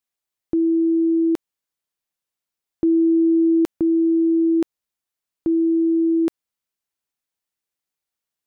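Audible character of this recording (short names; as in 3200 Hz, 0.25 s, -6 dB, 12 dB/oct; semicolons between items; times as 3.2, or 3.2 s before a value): noise floor -87 dBFS; spectral tilt +11.5 dB/oct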